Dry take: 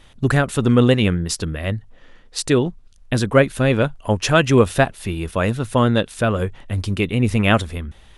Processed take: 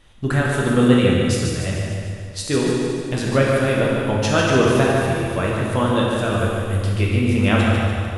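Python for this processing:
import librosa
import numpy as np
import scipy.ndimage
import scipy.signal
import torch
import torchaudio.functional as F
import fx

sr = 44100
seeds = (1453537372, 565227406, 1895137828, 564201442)

y = fx.high_shelf(x, sr, hz=4600.0, db=11.5, at=(6.3, 6.77))
y = fx.echo_feedback(y, sr, ms=147, feedback_pct=56, wet_db=-6.0)
y = fx.rev_plate(y, sr, seeds[0], rt60_s=2.0, hf_ratio=0.85, predelay_ms=0, drr_db=-3.0)
y = y * librosa.db_to_amplitude(-6.0)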